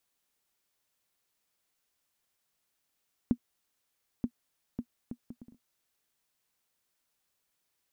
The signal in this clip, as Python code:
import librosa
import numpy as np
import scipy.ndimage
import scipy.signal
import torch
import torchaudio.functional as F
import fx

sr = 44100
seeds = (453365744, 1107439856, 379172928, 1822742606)

y = fx.bouncing_ball(sr, first_gap_s=0.93, ratio=0.59, hz=240.0, decay_ms=69.0, level_db=-15.0)